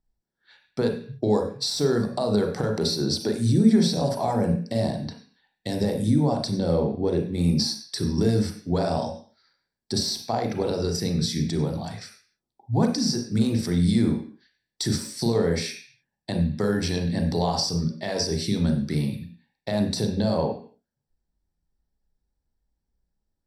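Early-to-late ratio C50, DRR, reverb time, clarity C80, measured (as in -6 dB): 6.0 dB, 2.5 dB, 0.45 s, 11.5 dB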